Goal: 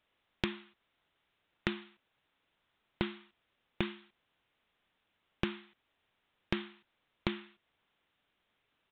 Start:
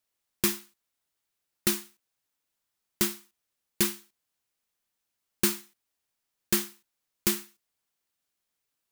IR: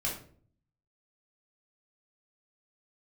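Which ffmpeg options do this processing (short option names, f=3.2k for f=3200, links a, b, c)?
-af "aresample=8000,aresample=44100,acompressor=threshold=-41dB:ratio=20,volume=10.5dB"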